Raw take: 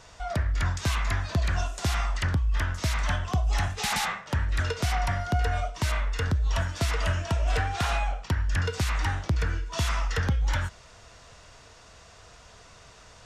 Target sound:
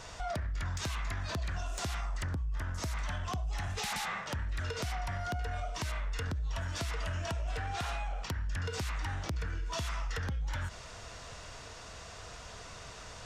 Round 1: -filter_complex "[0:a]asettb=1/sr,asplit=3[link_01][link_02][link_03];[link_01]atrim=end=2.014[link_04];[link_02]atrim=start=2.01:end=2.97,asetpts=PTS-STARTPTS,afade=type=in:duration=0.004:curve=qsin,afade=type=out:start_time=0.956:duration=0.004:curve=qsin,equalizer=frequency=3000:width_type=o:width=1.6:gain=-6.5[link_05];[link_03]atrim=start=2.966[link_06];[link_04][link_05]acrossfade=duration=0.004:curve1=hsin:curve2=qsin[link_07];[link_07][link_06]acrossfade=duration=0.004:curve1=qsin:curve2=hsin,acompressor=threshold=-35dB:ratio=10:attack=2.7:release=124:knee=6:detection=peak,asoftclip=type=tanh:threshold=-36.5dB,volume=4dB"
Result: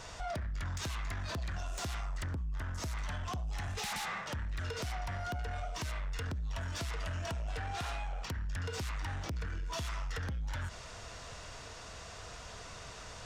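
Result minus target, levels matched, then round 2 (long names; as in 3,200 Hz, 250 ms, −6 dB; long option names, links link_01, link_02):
soft clipping: distortion +10 dB
-filter_complex "[0:a]asettb=1/sr,asplit=3[link_01][link_02][link_03];[link_01]atrim=end=2.014[link_04];[link_02]atrim=start=2.01:end=2.97,asetpts=PTS-STARTPTS,afade=type=in:duration=0.004:curve=qsin,afade=type=out:start_time=0.956:duration=0.004:curve=qsin,equalizer=frequency=3000:width_type=o:width=1.6:gain=-6.5[link_05];[link_03]atrim=start=2.966[link_06];[link_04][link_05]acrossfade=duration=0.004:curve1=hsin:curve2=qsin[link_07];[link_07][link_06]acrossfade=duration=0.004:curve1=qsin:curve2=hsin,acompressor=threshold=-35dB:ratio=10:attack=2.7:release=124:knee=6:detection=peak,asoftclip=type=tanh:threshold=-29.5dB,volume=4dB"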